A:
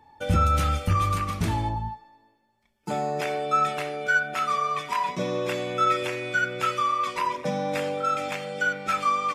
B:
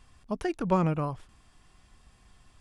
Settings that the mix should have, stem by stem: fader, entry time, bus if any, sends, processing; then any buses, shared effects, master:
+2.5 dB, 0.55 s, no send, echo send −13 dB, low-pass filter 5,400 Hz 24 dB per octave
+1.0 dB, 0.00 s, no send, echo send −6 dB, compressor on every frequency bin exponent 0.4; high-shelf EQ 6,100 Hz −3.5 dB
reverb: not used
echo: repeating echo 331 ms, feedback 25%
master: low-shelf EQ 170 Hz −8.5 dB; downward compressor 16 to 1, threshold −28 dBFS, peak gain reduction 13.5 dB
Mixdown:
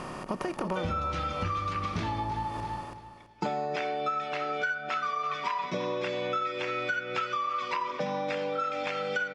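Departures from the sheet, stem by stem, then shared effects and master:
stem A +2.5 dB → +10.0 dB
stem B: missing high-shelf EQ 6,100 Hz −3.5 dB

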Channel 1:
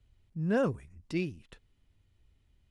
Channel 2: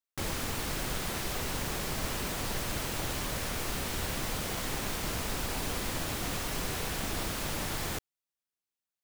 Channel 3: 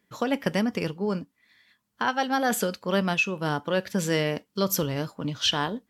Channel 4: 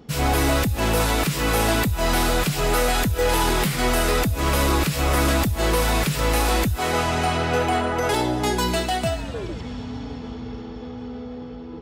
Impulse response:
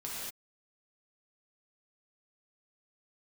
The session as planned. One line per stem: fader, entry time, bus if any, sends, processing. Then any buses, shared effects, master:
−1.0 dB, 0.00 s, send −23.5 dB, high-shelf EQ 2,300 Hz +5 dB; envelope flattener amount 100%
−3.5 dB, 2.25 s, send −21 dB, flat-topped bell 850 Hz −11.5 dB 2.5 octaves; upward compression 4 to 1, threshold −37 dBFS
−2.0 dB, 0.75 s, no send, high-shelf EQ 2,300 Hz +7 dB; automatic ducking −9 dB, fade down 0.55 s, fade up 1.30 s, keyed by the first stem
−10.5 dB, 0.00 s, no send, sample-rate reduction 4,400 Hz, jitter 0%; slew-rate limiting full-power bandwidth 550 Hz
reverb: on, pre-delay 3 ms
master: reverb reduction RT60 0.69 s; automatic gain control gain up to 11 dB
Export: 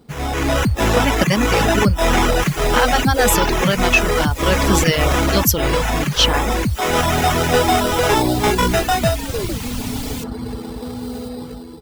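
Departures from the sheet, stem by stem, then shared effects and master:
stem 1: muted
stem 4 −10.5 dB → −3.0 dB

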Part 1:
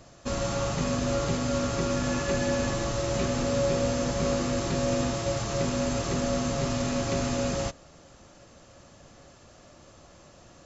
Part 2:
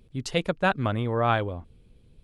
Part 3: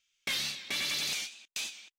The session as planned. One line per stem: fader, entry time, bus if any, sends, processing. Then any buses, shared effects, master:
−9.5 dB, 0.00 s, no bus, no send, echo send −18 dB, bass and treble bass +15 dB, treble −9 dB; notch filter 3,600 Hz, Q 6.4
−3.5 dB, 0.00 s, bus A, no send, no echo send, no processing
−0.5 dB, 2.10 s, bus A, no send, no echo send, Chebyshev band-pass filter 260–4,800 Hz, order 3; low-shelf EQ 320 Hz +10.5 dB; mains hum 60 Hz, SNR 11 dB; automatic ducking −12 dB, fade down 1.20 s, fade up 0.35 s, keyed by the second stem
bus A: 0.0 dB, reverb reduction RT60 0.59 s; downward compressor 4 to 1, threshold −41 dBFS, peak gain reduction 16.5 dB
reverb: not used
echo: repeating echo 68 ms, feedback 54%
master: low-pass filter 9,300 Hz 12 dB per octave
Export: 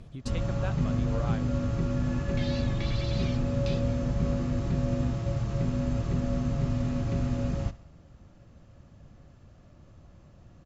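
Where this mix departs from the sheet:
stem 1: missing notch filter 3,600 Hz, Q 6.4
stem 2 −3.5 dB → +5.5 dB

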